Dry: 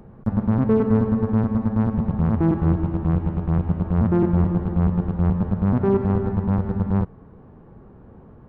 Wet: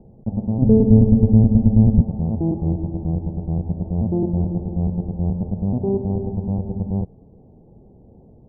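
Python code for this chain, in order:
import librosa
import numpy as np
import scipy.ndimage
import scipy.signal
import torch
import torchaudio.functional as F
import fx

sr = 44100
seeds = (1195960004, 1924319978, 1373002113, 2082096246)

y = scipy.signal.sosfilt(scipy.signal.butter(8, 800.0, 'lowpass', fs=sr, output='sos'), x)
y = fx.tilt_eq(y, sr, slope=-3.5, at=(0.62, 2.02))
y = y * 10.0 ** (-2.0 / 20.0)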